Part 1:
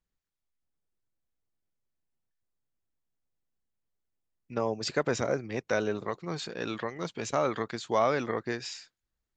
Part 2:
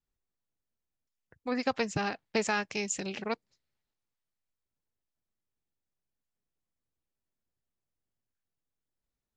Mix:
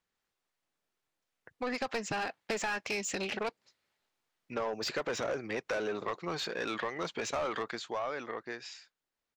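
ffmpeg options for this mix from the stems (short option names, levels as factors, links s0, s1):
-filter_complex "[0:a]volume=0.447,afade=t=out:st=7.55:d=0.4:silence=0.266073[s0];[1:a]dynaudnorm=f=410:g=11:m=1.5,adelay=150,volume=0.422[s1];[s0][s1]amix=inputs=2:normalize=0,asplit=2[s2][s3];[s3]highpass=f=720:p=1,volume=12.6,asoftclip=type=tanh:threshold=0.106[s4];[s2][s4]amix=inputs=2:normalize=0,lowpass=f=3200:p=1,volume=0.501,acompressor=threshold=0.0251:ratio=3"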